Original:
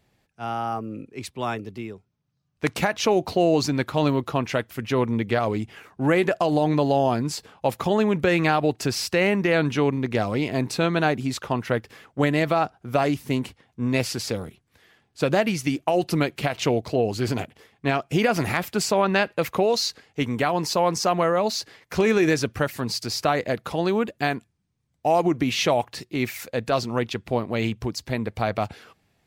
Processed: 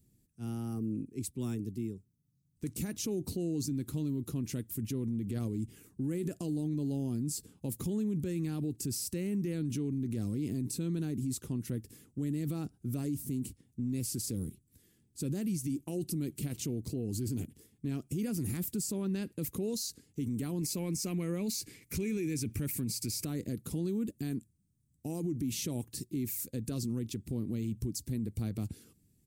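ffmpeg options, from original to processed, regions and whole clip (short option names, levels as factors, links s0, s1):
-filter_complex "[0:a]asettb=1/sr,asplit=3[s0][s1][s2];[s0]atrim=end=20.614[s3];[s1]atrim=start=20.61:end=23.25,asetpts=PTS-STARTPTS,afade=t=in:d=0.004:c=qsin,afade=t=out:st=2.636:d=0.004:c=qsin,acontrast=21,equalizer=f=2300:t=o:w=0.4:g=14.5[s4];[s2]atrim=start=23.246[s5];[s3][s4]acrossfade=d=0.004:c1=hsin:c2=qsin[s6];[s6][s5]acrossfade=d=0.004:c1=qsin:c2=hsin,firequalizer=gain_entry='entry(290,0);entry(650,-27);entry(8300,5)':delay=0.05:min_phase=1,alimiter=level_in=1.41:limit=0.0631:level=0:latency=1:release=53,volume=0.708"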